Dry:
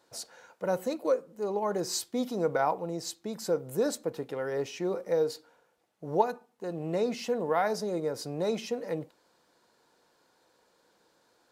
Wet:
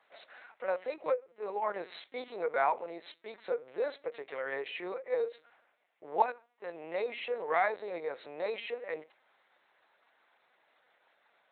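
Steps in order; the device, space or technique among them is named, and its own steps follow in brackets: talking toy (LPC vocoder at 8 kHz pitch kept; high-pass 590 Hz 12 dB/octave; peaking EQ 2.1 kHz +9 dB 0.58 oct)

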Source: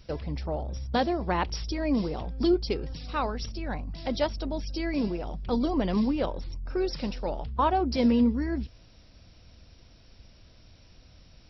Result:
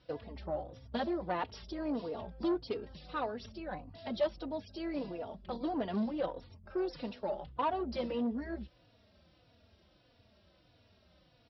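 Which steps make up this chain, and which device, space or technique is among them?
barber-pole flanger into a guitar amplifier (endless flanger 3.5 ms -1.6 Hz; saturation -23.5 dBFS, distortion -14 dB; cabinet simulation 110–4100 Hz, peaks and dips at 140 Hz -7 dB, 270 Hz -3 dB, 610 Hz +4 dB, 2.3 kHz -5 dB); trim -2.5 dB

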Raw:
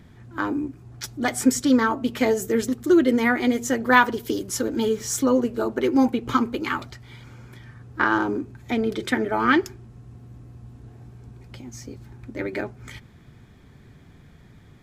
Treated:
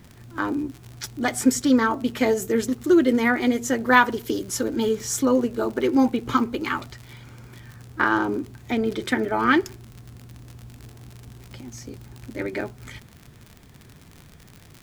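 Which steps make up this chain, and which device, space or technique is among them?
vinyl LP (crackle 64 per s -32 dBFS; pink noise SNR 35 dB)

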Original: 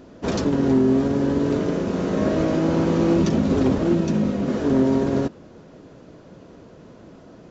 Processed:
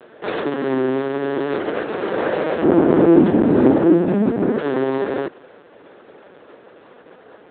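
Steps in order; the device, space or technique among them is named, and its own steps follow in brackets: 2.63–4.59 s: tilt EQ -4.5 dB/octave; talking toy (LPC vocoder at 8 kHz pitch kept; high-pass 390 Hz 12 dB/octave; peaking EQ 1.7 kHz +5 dB 0.59 oct); trim +5.5 dB

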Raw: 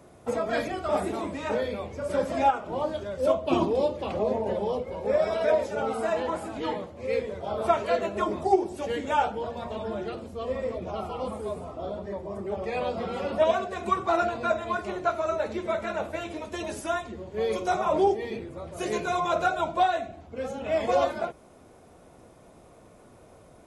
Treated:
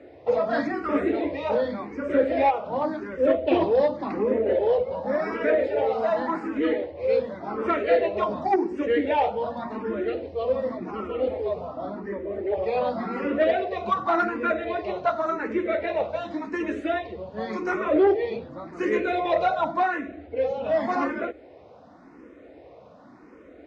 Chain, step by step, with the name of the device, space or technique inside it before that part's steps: barber-pole phaser into a guitar amplifier (barber-pole phaser +0.89 Hz; saturation -19.5 dBFS, distortion -18 dB; cabinet simulation 76–4400 Hz, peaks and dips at 110 Hz -8 dB, 160 Hz -5 dB, 290 Hz +9 dB, 500 Hz +5 dB, 1.9 kHz +6 dB, 3.3 kHz -5 dB); trim +5 dB

